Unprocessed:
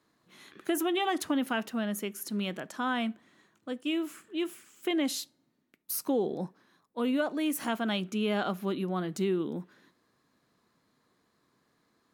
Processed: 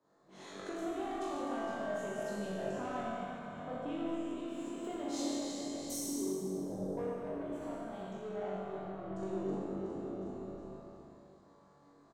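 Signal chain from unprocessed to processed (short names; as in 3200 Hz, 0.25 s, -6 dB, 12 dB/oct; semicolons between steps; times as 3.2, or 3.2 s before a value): regenerating reverse delay 0.183 s, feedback 64%, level -10.5 dB; EQ curve 250 Hz 0 dB, 690 Hz +9 dB, 2500 Hz -11 dB, 7800 Hz -4 dB, 11000 Hz -23 dB; limiter -24 dBFS, peak gain reduction 11.5 dB; flange 1.2 Hz, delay 8.1 ms, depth 5.6 ms, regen +77%; flutter echo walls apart 3.6 m, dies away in 0.48 s; 5.91–6.78 spectral repair 410–5400 Hz both; soft clip -30 dBFS, distortion -14 dB; 7.09–9.23 expander -25 dBFS; frequency-shifting echo 0.145 s, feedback 54%, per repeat -40 Hz, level -13 dB; compressor 6:1, threshold -50 dBFS, peak gain reduction 16.5 dB; Schroeder reverb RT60 2.2 s, combs from 28 ms, DRR -3 dB; three-band expander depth 40%; gain +8 dB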